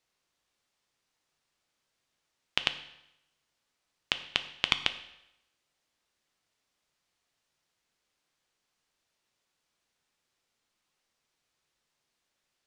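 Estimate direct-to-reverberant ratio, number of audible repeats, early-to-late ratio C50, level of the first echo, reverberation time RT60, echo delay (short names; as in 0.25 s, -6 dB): 9.5 dB, none, 13.0 dB, none, 0.85 s, none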